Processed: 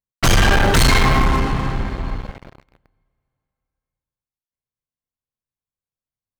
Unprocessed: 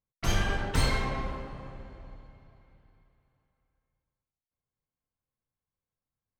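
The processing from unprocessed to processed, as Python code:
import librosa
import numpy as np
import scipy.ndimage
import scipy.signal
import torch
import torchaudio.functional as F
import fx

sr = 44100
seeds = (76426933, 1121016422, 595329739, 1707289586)

y = fx.peak_eq(x, sr, hz=560.0, db=-13.5, octaves=0.3, at=(0.77, 2.25))
y = fx.leveller(y, sr, passes=5)
y = y * librosa.db_to_amplitude(4.5)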